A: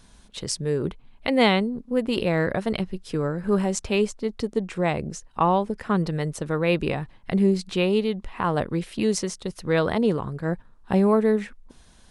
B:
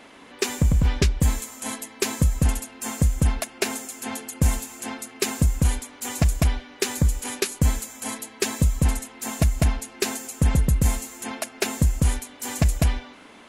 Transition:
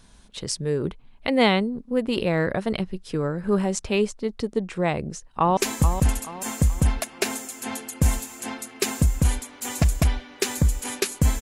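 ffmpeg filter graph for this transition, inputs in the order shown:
ffmpeg -i cue0.wav -i cue1.wav -filter_complex "[0:a]apad=whole_dur=11.41,atrim=end=11.41,atrim=end=5.572[link_01];[1:a]atrim=start=1.968:end=7.81[link_02];[link_01][link_02]acrossfade=duration=0.004:curve1=hsin:curve2=hsin,asplit=2[link_03][link_04];[link_04]afade=type=in:start_time=5.02:duration=0.01,afade=type=out:start_time=5.57:duration=0.01,aecho=0:1:430|860|1290|1720:0.334965|0.133986|0.0535945|0.0214378[link_05];[link_03][link_05]amix=inputs=2:normalize=0" out.wav

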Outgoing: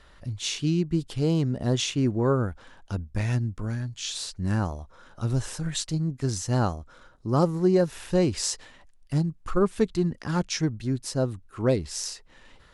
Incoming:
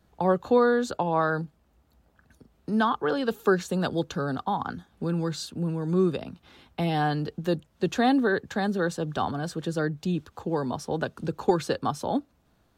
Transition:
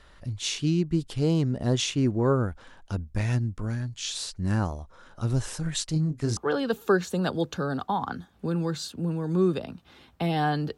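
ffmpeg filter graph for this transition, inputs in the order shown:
ffmpeg -i cue0.wav -i cue1.wav -filter_complex "[0:a]asettb=1/sr,asplit=3[link_01][link_02][link_03];[link_01]atrim=end=5.934[link_04];[link_02]atrim=start=5.93:end=6.37,asetpts=PTS-STARTPTS,afade=type=in:duration=0.004:curve=qsin,afade=type=out:start_time=0.436:duration=0.004:curve=qsin,asplit=2[link_05][link_06];[link_06]adelay=26,volume=-8dB[link_07];[link_05][link_07]amix=inputs=2:normalize=0,atrim=end_sample=19404[link_08];[link_03]atrim=start=6.366[link_09];[link_04][link_08]acrossfade=duration=0.004:curve1=hsin:curve2=qsin[link_10];[link_10][link_09]acrossfade=duration=0.004:curve1=qsin:curve2=hsin,apad=whole_dur=10.77,atrim=end=10.77,atrim=end=6.372[link_11];[1:a]atrim=start=2.948:end=7.35[link_12];[link_11][link_12]acrossfade=duration=0.004:curve1=hsin:curve2=hsin" out.wav

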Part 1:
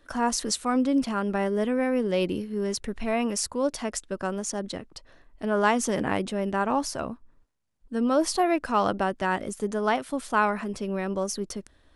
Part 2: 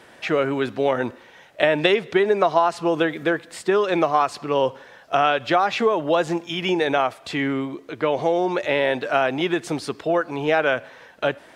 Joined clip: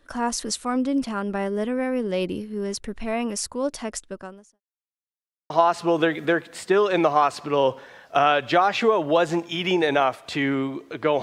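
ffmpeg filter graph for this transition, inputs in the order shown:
ffmpeg -i cue0.wav -i cue1.wav -filter_complex "[0:a]apad=whole_dur=11.22,atrim=end=11.22,asplit=2[link_01][link_02];[link_01]atrim=end=4.61,asetpts=PTS-STARTPTS,afade=type=out:start_time=4.05:duration=0.56:curve=qua[link_03];[link_02]atrim=start=4.61:end=5.5,asetpts=PTS-STARTPTS,volume=0[link_04];[1:a]atrim=start=2.48:end=8.2,asetpts=PTS-STARTPTS,afade=type=in:duration=0.004:curve=hsin[link_05];[link_03][link_04][link_05]concat=n=3:v=0:a=1" out.wav

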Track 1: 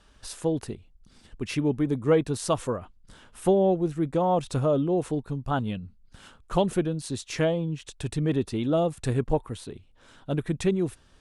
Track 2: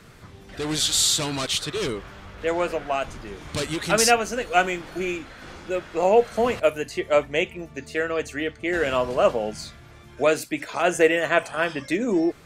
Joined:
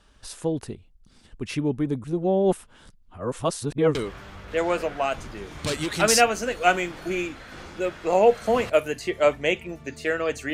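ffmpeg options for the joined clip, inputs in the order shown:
ffmpeg -i cue0.wav -i cue1.wav -filter_complex "[0:a]apad=whole_dur=10.53,atrim=end=10.53,asplit=2[link_01][link_02];[link_01]atrim=end=2.042[link_03];[link_02]atrim=start=2.038:end=3.952,asetpts=PTS-STARTPTS,areverse[link_04];[1:a]atrim=start=1.848:end=8.43[link_05];[link_03][link_04]acrossfade=duration=0.004:curve1=hsin:curve2=hsin[link_06];[link_06][link_05]acrossfade=duration=0.004:curve1=hsin:curve2=hsin" out.wav

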